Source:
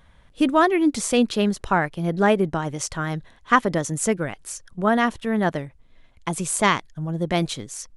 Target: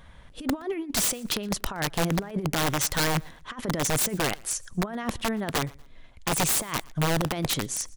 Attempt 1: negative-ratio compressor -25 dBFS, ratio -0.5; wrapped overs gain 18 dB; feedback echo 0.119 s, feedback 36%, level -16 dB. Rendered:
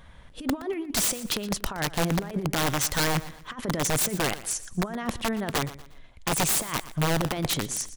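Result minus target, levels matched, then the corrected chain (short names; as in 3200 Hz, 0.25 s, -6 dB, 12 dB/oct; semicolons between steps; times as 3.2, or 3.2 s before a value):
echo-to-direct +9 dB
negative-ratio compressor -25 dBFS, ratio -0.5; wrapped overs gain 18 dB; feedback echo 0.119 s, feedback 36%, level -25 dB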